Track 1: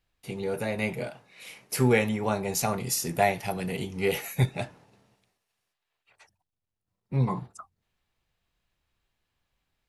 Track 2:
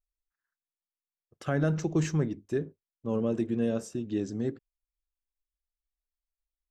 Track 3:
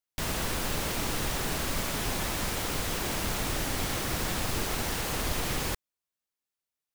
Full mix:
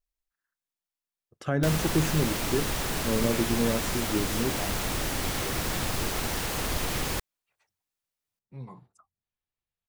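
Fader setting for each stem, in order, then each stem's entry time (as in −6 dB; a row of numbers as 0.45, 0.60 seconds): −16.5, +1.5, +1.0 decibels; 1.40, 0.00, 1.45 seconds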